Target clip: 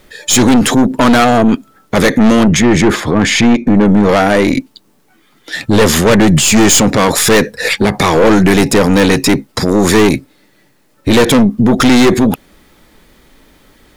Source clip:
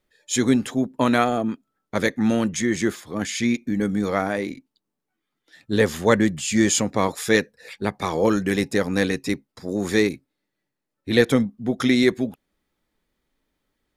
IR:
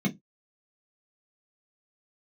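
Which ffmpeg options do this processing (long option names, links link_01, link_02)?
-filter_complex "[0:a]asettb=1/sr,asplit=3[link_01][link_02][link_03];[link_01]atrim=end=2.434[link_04];[link_02]atrim=start=2.43:end=4.09,asetpts=PTS-STARTPTS,afade=type=in:duration=0.004:curve=qsin,afade=type=out:start_time=1.656:duration=0.004:curve=qsin,lowpass=frequency=1400:poles=1[link_05];[link_03]atrim=start=4.086[link_06];[link_04][link_05]acrossfade=duration=0.004:curve1=hsin:curve2=qsin[link_07];[link_07][link_06]acrossfade=duration=0.004:curve1=qsin:curve2=hsin,aeval=exprs='(tanh(15.8*val(0)+0.45)-tanh(0.45))/15.8':channel_layout=same,alimiter=level_in=32dB:limit=-1dB:release=50:level=0:latency=1,volume=-1dB"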